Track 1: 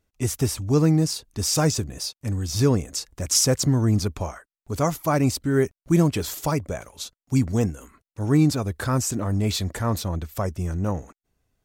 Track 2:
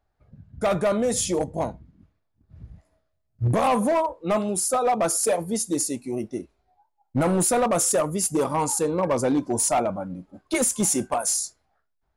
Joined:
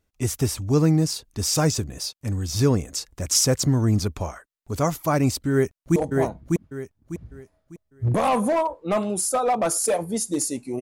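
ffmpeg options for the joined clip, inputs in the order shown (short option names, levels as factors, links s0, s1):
-filter_complex "[0:a]apad=whole_dur=10.81,atrim=end=10.81,atrim=end=5.962[s0];[1:a]atrim=start=1.348:end=6.2[s1];[s0][s1]acrossfade=d=0.004:c1=hsin:c2=hsin,asplit=2[s2][s3];[s3]afade=t=in:st=5.51:d=0.01,afade=t=out:st=5.96:d=0.01,aecho=0:1:600|1200|1800|2400:0.749894|0.224968|0.0674905|0.0202471[s4];[s2][s4]amix=inputs=2:normalize=0"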